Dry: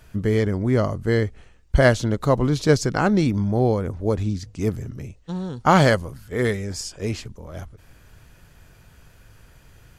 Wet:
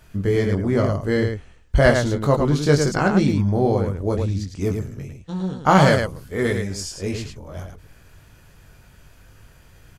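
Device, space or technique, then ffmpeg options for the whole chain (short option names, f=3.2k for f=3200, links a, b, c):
slapback doubling: -filter_complex "[0:a]asplit=3[a][b][c];[b]adelay=21,volume=-4.5dB[d];[c]adelay=108,volume=-5dB[e];[a][d][e]amix=inputs=3:normalize=0,volume=-1dB"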